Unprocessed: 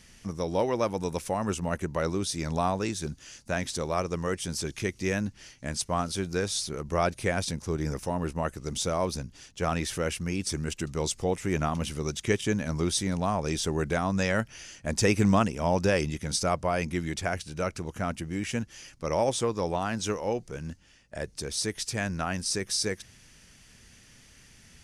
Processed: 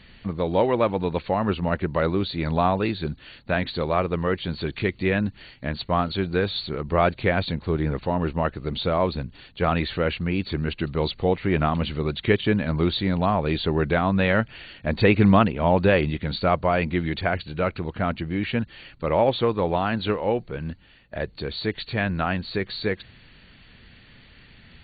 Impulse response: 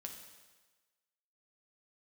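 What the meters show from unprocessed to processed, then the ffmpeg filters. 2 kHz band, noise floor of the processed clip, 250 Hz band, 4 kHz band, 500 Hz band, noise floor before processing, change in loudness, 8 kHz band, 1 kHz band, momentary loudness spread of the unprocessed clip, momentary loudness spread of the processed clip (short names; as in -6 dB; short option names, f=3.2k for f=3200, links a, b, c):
+6.0 dB, -52 dBFS, +6.0 dB, +3.0 dB, +6.0 dB, -56 dBFS, +5.5 dB, under -40 dB, +6.0 dB, 8 LU, 10 LU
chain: -af "volume=6dB" -ar 32000 -c:a ac3 -b:a 32k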